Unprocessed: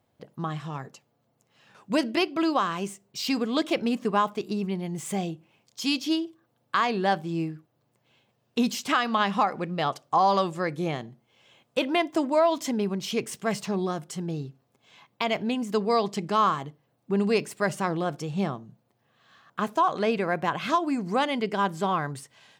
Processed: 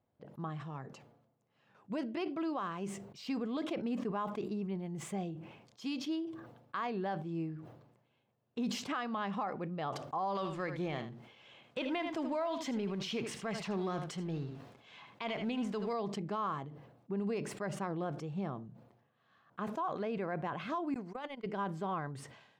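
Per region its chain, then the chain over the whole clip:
10.35–15.93 s: companding laws mixed up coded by mu + peaking EQ 3.3 kHz +8 dB 2.8 oct + delay 78 ms -12 dB
20.94–21.46 s: high-pass 490 Hz 6 dB/octave + gate -29 dBFS, range -40 dB + compressor with a negative ratio -29 dBFS, ratio -0.5
whole clip: low-pass 1.5 kHz 6 dB/octave; peak limiter -19.5 dBFS; decay stretcher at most 63 dB/s; trim -8.5 dB

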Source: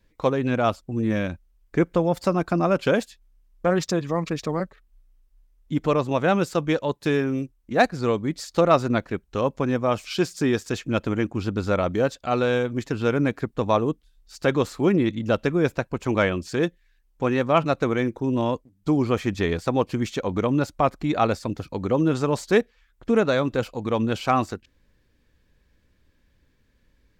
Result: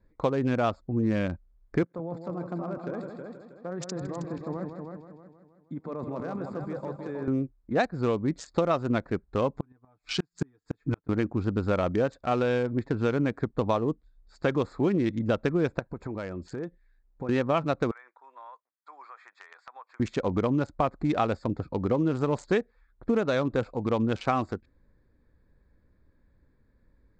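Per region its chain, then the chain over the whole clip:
1.83–7.28 s: high-pass 120 Hz 24 dB/octave + level held to a coarse grid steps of 17 dB + multi-head delay 159 ms, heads first and second, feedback 42%, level -7.5 dB
9.53–11.09 s: peaking EQ 560 Hz -14.5 dB 0.29 oct + comb 6.8 ms, depth 77% + inverted gate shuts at -15 dBFS, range -39 dB
12.42–12.99 s: distance through air 100 m + band-stop 1.2 kHz
15.79–17.29 s: band-stop 1.1 kHz, Q 20 + compression 4:1, threshold -32 dBFS
17.91–20.00 s: high-pass 1.1 kHz 24 dB/octave + treble shelf 2.3 kHz -11 dB + compression 4:1, threshold -40 dBFS
whole clip: local Wiener filter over 15 samples; steep low-pass 8.3 kHz 48 dB/octave; compression, threshold -21 dBFS

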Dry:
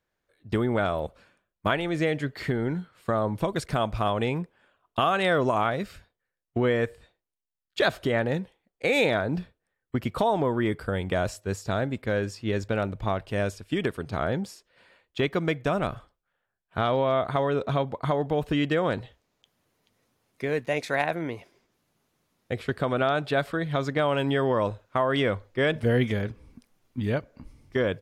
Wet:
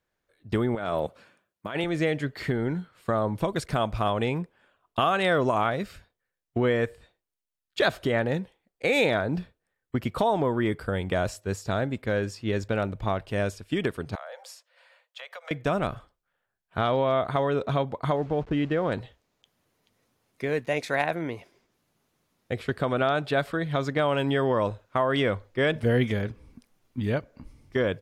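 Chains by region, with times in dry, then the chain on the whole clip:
0.75–1.84 s: high-pass 120 Hz + compressor with a negative ratio -28 dBFS, ratio -0.5
14.15–15.51 s: steep high-pass 500 Hz 96 dB/octave + compression 5:1, threshold -38 dBFS
18.16–18.92 s: send-on-delta sampling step -41 dBFS + tape spacing loss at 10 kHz 23 dB
whole clip: none

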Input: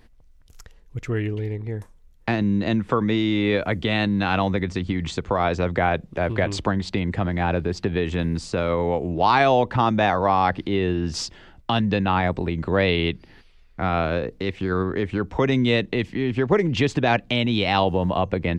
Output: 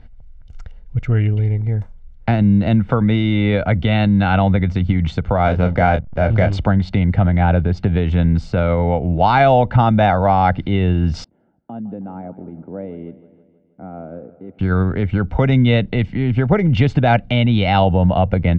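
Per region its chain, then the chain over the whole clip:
5.44–6.53 s: hysteresis with a dead band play -29.5 dBFS + doubling 27 ms -7.5 dB
11.24–14.59 s: ladder band-pass 340 Hz, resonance 35% + feedback delay 159 ms, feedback 58%, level -16 dB
whole clip: low-pass 3.3 kHz 12 dB/octave; bass shelf 300 Hz +8.5 dB; comb 1.4 ms, depth 53%; trim +1.5 dB

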